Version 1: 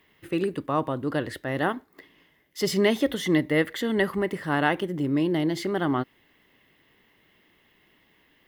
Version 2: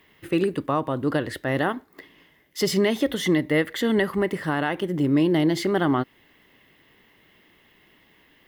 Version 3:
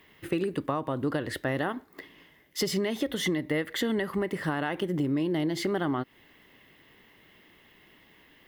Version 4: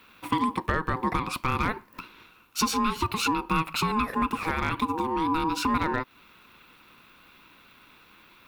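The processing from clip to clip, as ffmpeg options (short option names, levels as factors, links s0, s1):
-af "alimiter=limit=0.158:level=0:latency=1:release=259,volume=1.68"
-af "acompressor=threshold=0.0562:ratio=6"
-af "lowshelf=f=300:t=q:w=1.5:g=-7,aeval=exprs='val(0)*sin(2*PI*640*n/s)':c=same,asoftclip=type=hard:threshold=0.0944,volume=2.11"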